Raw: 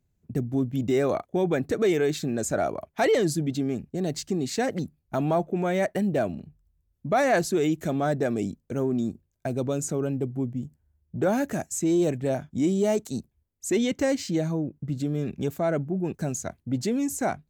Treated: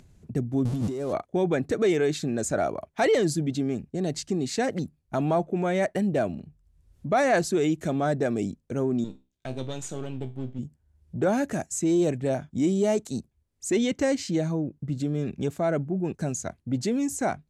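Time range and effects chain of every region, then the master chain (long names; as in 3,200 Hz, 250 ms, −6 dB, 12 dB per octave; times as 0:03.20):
0:00.65–0:01.13: converter with a step at zero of −30.5 dBFS + parametric band 1,900 Hz −10 dB 1.8 octaves + compressor whose output falls as the input rises −28 dBFS
0:09.04–0:10.59: gain on one half-wave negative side −7 dB + parametric band 3,400 Hz +12.5 dB 0.91 octaves + tuned comb filter 65 Hz, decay 0.28 s, mix 70%
whole clip: low-pass filter 11,000 Hz 24 dB per octave; upward compression, threshold −40 dBFS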